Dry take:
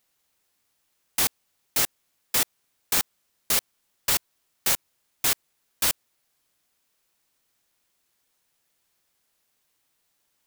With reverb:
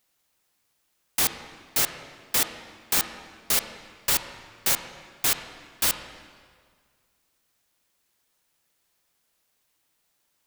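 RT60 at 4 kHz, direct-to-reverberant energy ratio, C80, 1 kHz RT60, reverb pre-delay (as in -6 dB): 1.5 s, 7.5 dB, 10.0 dB, 1.9 s, 28 ms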